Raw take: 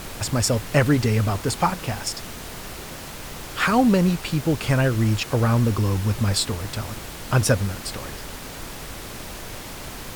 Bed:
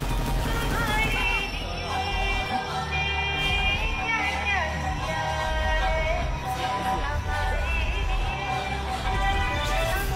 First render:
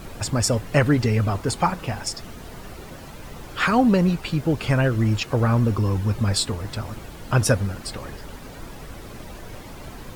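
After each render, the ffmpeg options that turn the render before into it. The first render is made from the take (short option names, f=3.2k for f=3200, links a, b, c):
-af "afftdn=nr=10:nf=-37"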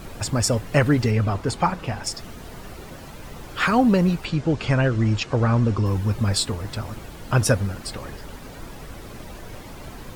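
-filter_complex "[0:a]asettb=1/sr,asplit=3[a][b][c];[a]atrim=end=1.114[d];[b]atrim=start=1.11:end=2.04,asetpts=PTS-STARTPTS,afade=t=in:d=0.004:c=qsin,afade=t=out:st=0.926:d=0.004:c=qsin,highshelf=f=8.9k:g=-10.5[e];[c]atrim=start=2.036[f];[d][e]acrossfade=d=0.004:c1=hsin:c2=qsin[g];[g][f]acrossfade=d=0.004:c1=qsin:c2=hsin,asettb=1/sr,asplit=3[h][i][j];[h]atrim=end=4.254[k];[i]atrim=start=4.25:end=5.86,asetpts=PTS-STARTPTS,afade=t=in:d=0.004:c=qsin,afade=t=out:st=1.606:d=0.004:c=qsin,lowpass=f=7.8k:w=0.5412,lowpass=f=7.8k:w=1.3066[l];[j]atrim=start=5.856[m];[k][l]acrossfade=d=0.004:c1=hsin:c2=qsin[n];[n][m]acrossfade=d=0.004:c1=qsin:c2=hsin"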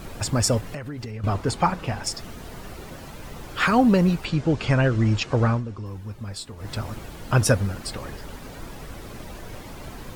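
-filter_complex "[0:a]asettb=1/sr,asplit=3[a][b][c];[a]atrim=end=0.604[d];[b]atrim=start=0.6:end=1.24,asetpts=PTS-STARTPTS,afade=t=in:d=0.004:c=qsin,afade=t=out:st=0.636:d=0.004:c=qsin,acompressor=threshold=-30dB:ratio=10:attack=3.2:release=140:knee=1:detection=peak[e];[c]atrim=start=1.236[f];[d][e]acrossfade=d=0.004:c1=hsin:c2=qsin[g];[g][f]acrossfade=d=0.004:c1=qsin:c2=hsin,asplit=3[h][i][j];[h]atrim=end=5.63,asetpts=PTS-STARTPTS,afade=t=out:st=5.47:d=0.16:silence=0.237137[k];[i]atrim=start=5.63:end=6.56,asetpts=PTS-STARTPTS,volume=-12.5dB[l];[j]atrim=start=6.56,asetpts=PTS-STARTPTS,afade=t=in:d=0.16:silence=0.237137[m];[k][l][m]concat=n=3:v=0:a=1"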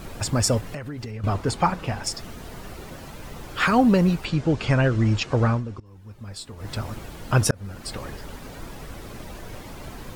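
-filter_complex "[0:a]asplit=3[a][b][c];[a]atrim=end=5.8,asetpts=PTS-STARTPTS,afade=t=out:st=5.796:d=0.004:c=hsin:silence=0.0944061[d];[b]atrim=start=5.8:end=7.51,asetpts=PTS-STARTPTS,afade=t=in:d=0.77:silence=0.0944061,afade=t=out:st=1.706:d=0.004:c=hsin[e];[c]atrim=start=7.51,asetpts=PTS-STARTPTS,afade=t=in:d=0.44[f];[d][e][f]concat=n=3:v=0:a=1"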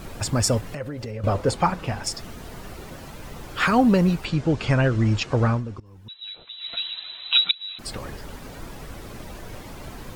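-filter_complex "[0:a]asettb=1/sr,asplit=3[a][b][c];[a]atrim=end=0.804[d];[b]atrim=start=0.8:end=1.55,asetpts=PTS-STARTPTS,afade=t=in:d=0.004:c=qsin,afade=t=out:st=0.746:d=0.004:c=qsin,equalizer=f=540:t=o:w=0.32:g=14.5[e];[c]atrim=start=1.546[f];[d][e]acrossfade=d=0.004:c1=hsin:c2=qsin[g];[g][f]acrossfade=d=0.004:c1=qsin:c2=hsin,asettb=1/sr,asplit=3[h][i][j];[h]atrim=end=6.084[k];[i]atrim=start=6.08:end=7.79,asetpts=PTS-STARTPTS,afade=t=in:d=0.004:c=qsin,afade=t=out:st=1.706:d=0.004:c=qsin,lowpass=f=3.4k:t=q:w=0.5098,lowpass=f=3.4k:t=q:w=0.6013,lowpass=f=3.4k:t=q:w=0.9,lowpass=f=3.4k:t=q:w=2.563,afreqshift=-4000[l];[j]atrim=start=7.786[m];[k][l]acrossfade=d=0.004:c1=hsin:c2=qsin[n];[n][m]acrossfade=d=0.004:c1=qsin:c2=hsin"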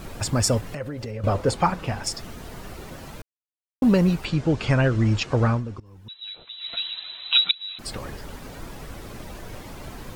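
-filter_complex "[0:a]asplit=3[a][b][c];[a]atrim=end=3.22,asetpts=PTS-STARTPTS,afade=t=out:st=3.216:d=0.004:c=hsin[d];[b]atrim=start=3.22:end=3.82,asetpts=PTS-STARTPTS,volume=0[e];[c]atrim=start=3.82,asetpts=PTS-STARTPTS,afade=t=in:d=0.004:c=hsin[f];[d][e][f]concat=n=3:v=0:a=1"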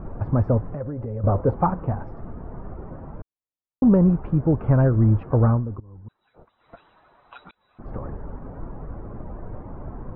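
-af "lowpass=f=1.2k:w=0.5412,lowpass=f=1.2k:w=1.3066,lowshelf=f=200:g=5"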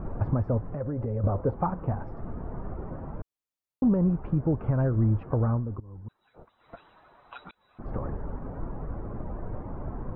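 -af "alimiter=limit=-16dB:level=0:latency=1:release=457"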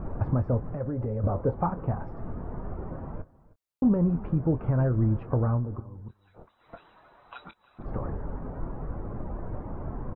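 -filter_complex "[0:a]asplit=2[a][b];[b]adelay=24,volume=-12dB[c];[a][c]amix=inputs=2:normalize=0,aecho=1:1:314:0.0891"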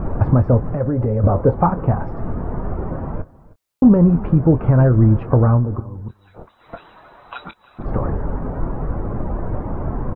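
-af "volume=11.5dB"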